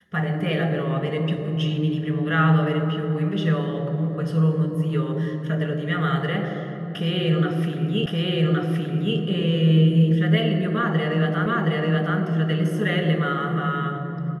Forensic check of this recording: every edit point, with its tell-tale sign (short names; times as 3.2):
8.06 repeat of the last 1.12 s
11.46 repeat of the last 0.72 s